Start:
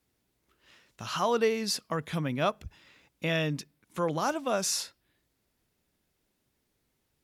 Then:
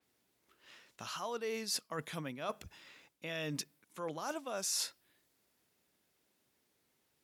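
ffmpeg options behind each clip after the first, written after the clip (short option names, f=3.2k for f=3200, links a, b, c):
-af "highpass=f=300:p=1,areverse,acompressor=threshold=-37dB:ratio=10,areverse,adynamicequalizer=threshold=0.002:dfrequency=5300:dqfactor=0.7:tfrequency=5300:tqfactor=0.7:attack=5:release=100:ratio=0.375:range=2.5:mode=boostabove:tftype=highshelf,volume=1dB"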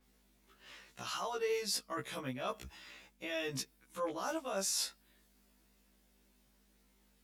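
-filter_complex "[0:a]asplit=2[a][b];[b]alimiter=level_in=10dB:limit=-24dB:level=0:latency=1:release=402,volume=-10dB,volume=0.5dB[c];[a][c]amix=inputs=2:normalize=0,aeval=exprs='val(0)+0.000501*(sin(2*PI*50*n/s)+sin(2*PI*2*50*n/s)/2+sin(2*PI*3*50*n/s)/3+sin(2*PI*4*50*n/s)/4+sin(2*PI*5*50*n/s)/5)':c=same,afftfilt=real='re*1.73*eq(mod(b,3),0)':imag='im*1.73*eq(mod(b,3),0)':win_size=2048:overlap=0.75"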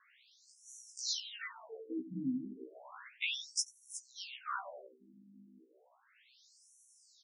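-filter_complex "[0:a]acompressor=threshold=-43dB:ratio=6,asplit=2[a][b];[b]adelay=90,lowpass=f=2.1k:p=1,volume=-13dB,asplit=2[c][d];[d]adelay=90,lowpass=f=2.1k:p=1,volume=0.55,asplit=2[e][f];[f]adelay=90,lowpass=f=2.1k:p=1,volume=0.55,asplit=2[g][h];[h]adelay=90,lowpass=f=2.1k:p=1,volume=0.55,asplit=2[i][j];[j]adelay=90,lowpass=f=2.1k:p=1,volume=0.55,asplit=2[k][l];[l]adelay=90,lowpass=f=2.1k:p=1,volume=0.55[m];[a][c][e][g][i][k][m]amix=inputs=7:normalize=0,afftfilt=real='re*between(b*sr/1024,220*pow(8000/220,0.5+0.5*sin(2*PI*0.33*pts/sr))/1.41,220*pow(8000/220,0.5+0.5*sin(2*PI*0.33*pts/sr))*1.41)':imag='im*between(b*sr/1024,220*pow(8000/220,0.5+0.5*sin(2*PI*0.33*pts/sr))/1.41,220*pow(8000/220,0.5+0.5*sin(2*PI*0.33*pts/sr))*1.41)':win_size=1024:overlap=0.75,volume=15.5dB"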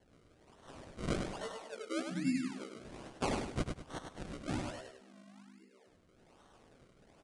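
-af "acrusher=samples=35:mix=1:aa=0.000001:lfo=1:lforange=35:lforate=1.2,aecho=1:1:101|202|303|404:0.531|0.17|0.0544|0.0174,aresample=22050,aresample=44100,volume=2dB"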